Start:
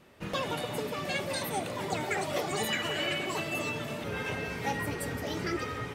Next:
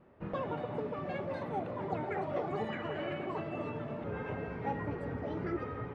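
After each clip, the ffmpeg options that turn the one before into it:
-af "lowpass=1.2k,volume=-2dB"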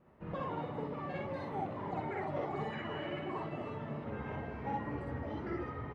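-af "aecho=1:1:48|61|62:0.631|0.668|0.708,volume=-5dB"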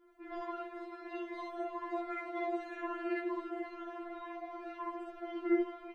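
-af "afftfilt=real='re*4*eq(mod(b,16),0)':imag='im*4*eq(mod(b,16),0)':win_size=2048:overlap=0.75,volume=4dB"

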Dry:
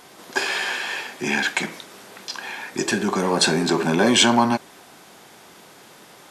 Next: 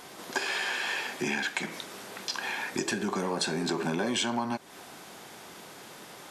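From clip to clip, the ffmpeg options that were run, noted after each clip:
-af "acompressor=threshold=-28dB:ratio=5"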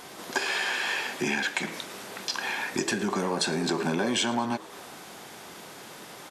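-filter_complex "[0:a]asplit=7[a][b][c][d][e][f][g];[b]adelay=111,afreqshift=82,volume=-20dB[h];[c]adelay=222,afreqshift=164,volume=-23.9dB[i];[d]adelay=333,afreqshift=246,volume=-27.8dB[j];[e]adelay=444,afreqshift=328,volume=-31.6dB[k];[f]adelay=555,afreqshift=410,volume=-35.5dB[l];[g]adelay=666,afreqshift=492,volume=-39.4dB[m];[a][h][i][j][k][l][m]amix=inputs=7:normalize=0,volume=2.5dB"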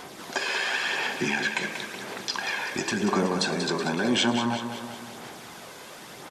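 -filter_complex "[0:a]aphaser=in_gain=1:out_gain=1:delay=2:decay=0.4:speed=0.95:type=sinusoidal,acrossover=split=8100[a][b];[b]acompressor=threshold=-53dB:ratio=4:attack=1:release=60[c];[a][c]amix=inputs=2:normalize=0,aecho=1:1:187|374|561|748|935|1122|1309:0.355|0.199|0.111|0.0623|0.0349|0.0195|0.0109"

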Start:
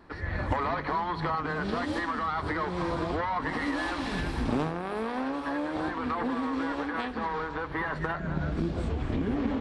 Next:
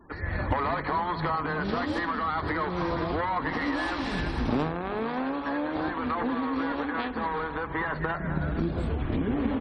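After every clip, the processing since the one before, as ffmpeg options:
-af "aecho=1:1:460:0.178,afftfilt=real='re*gte(hypot(re,im),0.00316)':imag='im*gte(hypot(re,im),0.00316)':win_size=1024:overlap=0.75,volume=1.5dB"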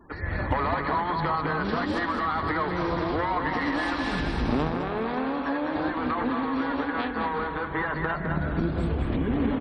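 -af "aecho=1:1:209|418|627:0.473|0.109|0.025,volume=1dB"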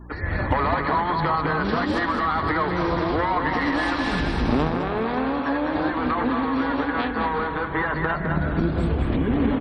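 -af "aeval=exprs='val(0)+0.00562*(sin(2*PI*60*n/s)+sin(2*PI*2*60*n/s)/2+sin(2*PI*3*60*n/s)/3+sin(2*PI*4*60*n/s)/4+sin(2*PI*5*60*n/s)/5)':c=same,volume=4dB"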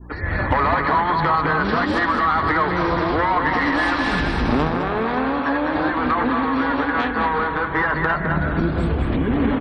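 -af "adynamicequalizer=threshold=0.0224:dfrequency=1500:dqfactor=0.86:tfrequency=1500:tqfactor=0.86:attack=5:release=100:ratio=0.375:range=2:mode=boostabove:tftype=bell,acontrast=54,volume=-4dB"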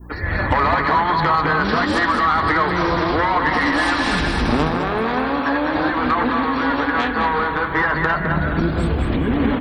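-af "aemphasis=mode=production:type=50fm,bandreject=f=132.6:t=h:w=4,bandreject=f=265.2:t=h:w=4,bandreject=f=397.8:t=h:w=4,bandreject=f=530.4:t=h:w=4,bandreject=f=663:t=h:w=4,bandreject=f=795.6:t=h:w=4,bandreject=f=928.2:t=h:w=4,bandreject=f=1.0608k:t=h:w=4,bandreject=f=1.1934k:t=h:w=4,bandreject=f=1.326k:t=h:w=4,bandreject=f=1.4586k:t=h:w=4,bandreject=f=1.5912k:t=h:w=4,bandreject=f=1.7238k:t=h:w=4,bandreject=f=1.8564k:t=h:w=4,bandreject=f=1.989k:t=h:w=4,bandreject=f=2.1216k:t=h:w=4,bandreject=f=2.2542k:t=h:w=4,bandreject=f=2.3868k:t=h:w=4,bandreject=f=2.5194k:t=h:w=4,bandreject=f=2.652k:t=h:w=4,bandreject=f=2.7846k:t=h:w=4,bandreject=f=2.9172k:t=h:w=4,bandreject=f=3.0498k:t=h:w=4,bandreject=f=3.1824k:t=h:w=4,bandreject=f=3.315k:t=h:w=4,bandreject=f=3.4476k:t=h:w=4,bandreject=f=3.5802k:t=h:w=4,bandreject=f=3.7128k:t=h:w=4,bandreject=f=3.8454k:t=h:w=4,bandreject=f=3.978k:t=h:w=4,bandreject=f=4.1106k:t=h:w=4,bandreject=f=4.2432k:t=h:w=4,bandreject=f=4.3758k:t=h:w=4,bandreject=f=4.5084k:t=h:w=4,bandreject=f=4.641k:t=h:w=4,bandreject=f=4.7736k:t=h:w=4,bandreject=f=4.9062k:t=h:w=4,volume=1.5dB"

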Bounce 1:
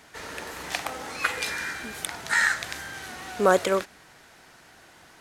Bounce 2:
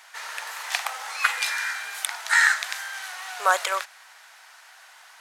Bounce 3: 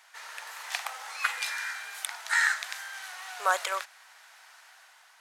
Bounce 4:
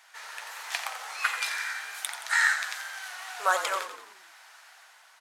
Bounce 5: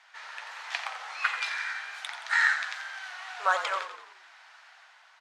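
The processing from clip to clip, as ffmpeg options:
-af "highpass=f=800:w=0.5412,highpass=f=800:w=1.3066,volume=4dB"
-af "dynaudnorm=f=100:g=11:m=4dB,volume=-8dB"
-filter_complex "[0:a]flanger=delay=5.8:depth=7.4:regen=-59:speed=1.4:shape=sinusoidal,asplit=2[a][b];[b]asplit=6[c][d][e][f][g][h];[c]adelay=87,afreqshift=-40,volume=-9.5dB[i];[d]adelay=174,afreqshift=-80,volume=-15.5dB[j];[e]adelay=261,afreqshift=-120,volume=-21.5dB[k];[f]adelay=348,afreqshift=-160,volume=-27.6dB[l];[g]adelay=435,afreqshift=-200,volume=-33.6dB[m];[h]adelay=522,afreqshift=-240,volume=-39.6dB[n];[i][j][k][l][m][n]amix=inputs=6:normalize=0[o];[a][o]amix=inputs=2:normalize=0,volume=5dB"
-af "highpass=540,lowpass=4.3k"

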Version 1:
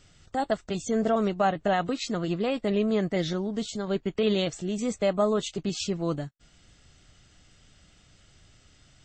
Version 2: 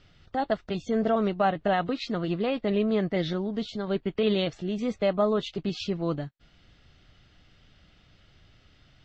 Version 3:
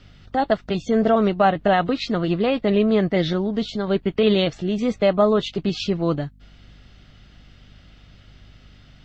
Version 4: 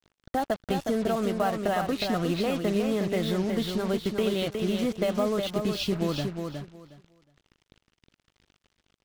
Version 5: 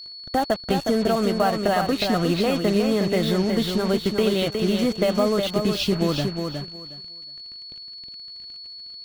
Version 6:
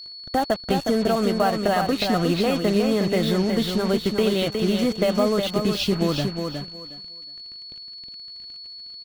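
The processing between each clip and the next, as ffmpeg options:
-af "lowpass=f=4.5k:w=0.5412,lowpass=f=4.5k:w=1.3066"
-af "aeval=exprs='val(0)+0.00158*(sin(2*PI*50*n/s)+sin(2*PI*2*50*n/s)/2+sin(2*PI*3*50*n/s)/3+sin(2*PI*4*50*n/s)/4+sin(2*PI*5*50*n/s)/5)':c=same,volume=7dB"
-filter_complex "[0:a]acompressor=threshold=-21dB:ratio=6,acrusher=bits=5:mix=0:aa=0.5,asplit=2[a][b];[b]aecho=0:1:363|726|1089:0.531|0.101|0.0192[c];[a][c]amix=inputs=2:normalize=0,volume=-2.5dB"
-af "aeval=exprs='val(0)+0.00794*sin(2*PI*4400*n/s)':c=same,volume=5.5dB"
-af "aecho=1:1:367:0.106"

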